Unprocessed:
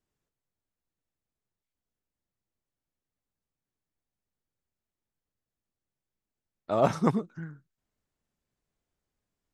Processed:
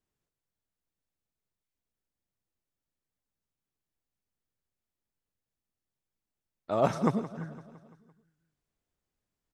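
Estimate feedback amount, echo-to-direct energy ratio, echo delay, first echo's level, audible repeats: 58%, -13.5 dB, 170 ms, -15.5 dB, 5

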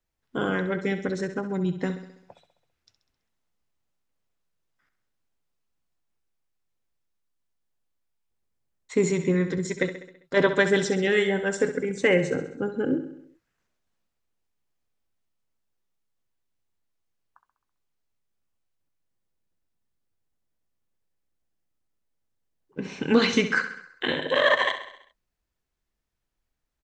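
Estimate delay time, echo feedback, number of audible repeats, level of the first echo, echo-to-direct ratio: 66 ms, 56%, 5, -11.0 dB, -9.5 dB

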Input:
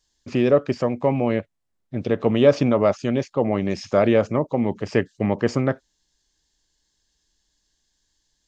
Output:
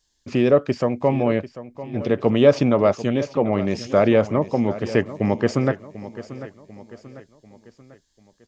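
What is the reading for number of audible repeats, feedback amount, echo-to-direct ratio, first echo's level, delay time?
3, 46%, -14.0 dB, -15.0 dB, 743 ms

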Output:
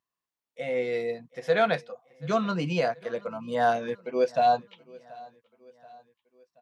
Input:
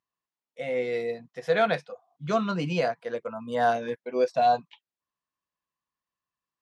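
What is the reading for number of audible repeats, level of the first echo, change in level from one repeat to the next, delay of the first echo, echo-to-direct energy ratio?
2, -23.0 dB, -6.0 dB, 730 ms, -22.0 dB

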